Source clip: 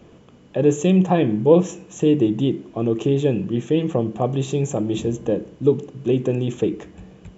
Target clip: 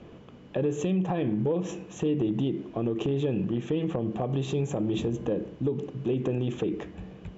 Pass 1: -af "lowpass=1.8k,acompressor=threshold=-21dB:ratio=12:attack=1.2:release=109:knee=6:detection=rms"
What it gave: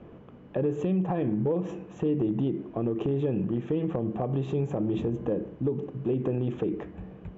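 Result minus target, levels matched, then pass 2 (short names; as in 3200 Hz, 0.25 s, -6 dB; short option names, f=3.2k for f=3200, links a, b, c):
4000 Hz band -9.5 dB
-af "lowpass=4.4k,acompressor=threshold=-21dB:ratio=12:attack=1.2:release=109:knee=6:detection=rms"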